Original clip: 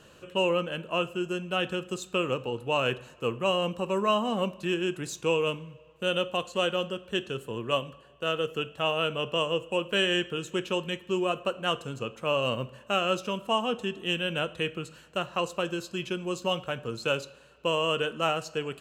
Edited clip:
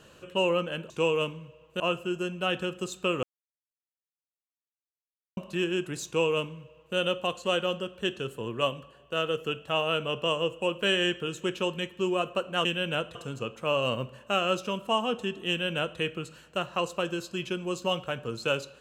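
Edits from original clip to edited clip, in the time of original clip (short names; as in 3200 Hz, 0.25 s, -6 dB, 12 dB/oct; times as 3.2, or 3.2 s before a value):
2.33–4.47 mute
5.16–6.06 copy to 0.9
14.09–14.59 copy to 11.75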